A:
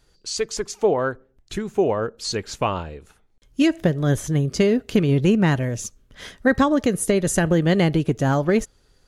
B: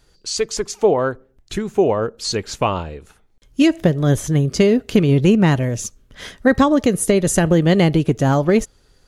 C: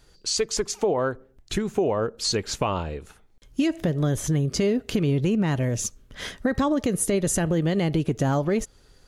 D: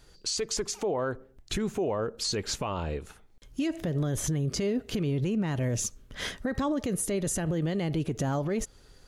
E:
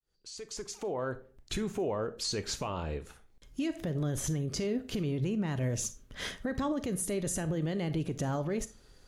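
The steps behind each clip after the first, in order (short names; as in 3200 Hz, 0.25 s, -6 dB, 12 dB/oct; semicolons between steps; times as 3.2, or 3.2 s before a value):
dynamic EQ 1600 Hz, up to -4 dB, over -40 dBFS, Q 3; gain +4 dB
limiter -8.5 dBFS, peak gain reduction 7 dB; compressor 2.5:1, threshold -22 dBFS, peak gain reduction 7 dB
limiter -21.5 dBFS, peak gain reduction 10 dB
opening faded in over 1.18 s; on a send at -13 dB: reverb RT60 0.30 s, pre-delay 32 ms; on the sum: gain -3.5 dB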